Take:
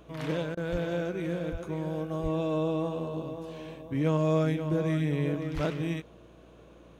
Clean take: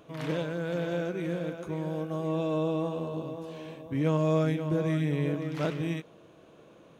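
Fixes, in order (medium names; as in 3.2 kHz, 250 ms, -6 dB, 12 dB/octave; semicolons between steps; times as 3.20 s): de-hum 58.6 Hz, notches 6; de-plosive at 0.71/1.51/2.22/5.54 s; interpolate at 0.55 s, 20 ms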